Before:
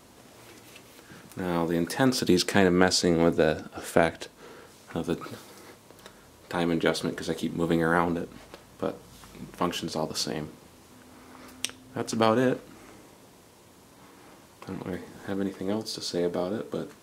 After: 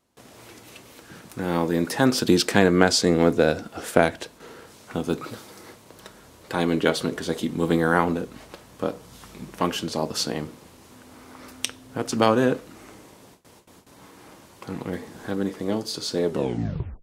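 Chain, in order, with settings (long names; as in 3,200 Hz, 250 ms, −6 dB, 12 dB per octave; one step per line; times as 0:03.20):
turntable brake at the end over 0.77 s
noise gate with hold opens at −43 dBFS
level +3.5 dB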